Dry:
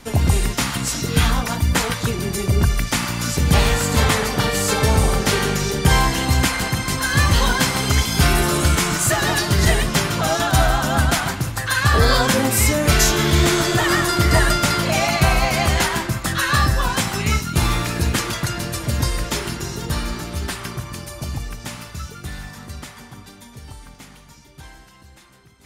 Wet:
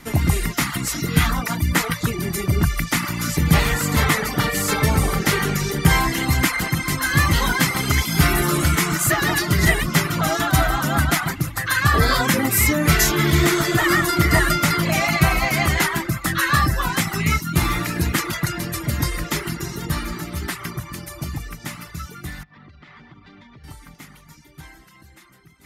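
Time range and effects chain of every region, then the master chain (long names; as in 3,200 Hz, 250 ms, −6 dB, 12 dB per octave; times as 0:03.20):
0:22.43–0:23.64: low-pass filter 4,000 Hz 24 dB per octave + downward compressor 16 to 1, threshold −40 dBFS
whole clip: reverb reduction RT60 0.51 s; thirty-one-band graphic EQ 160 Hz +8 dB, 315 Hz +7 dB, 500 Hz −3 dB, 1,250 Hz +5 dB, 2,000 Hz +8 dB, 12,500 Hz +9 dB; level −2.5 dB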